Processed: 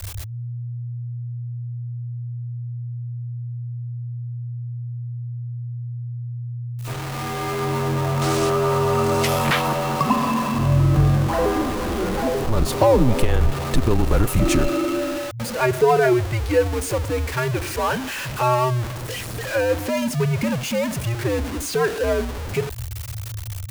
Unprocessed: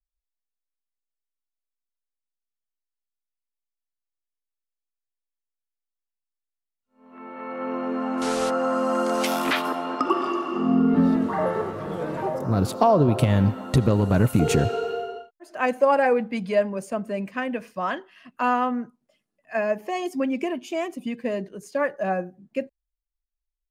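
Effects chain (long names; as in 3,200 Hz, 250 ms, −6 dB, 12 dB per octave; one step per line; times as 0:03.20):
converter with a step at zero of −25 dBFS
frequency shifter −120 Hz
level +1.5 dB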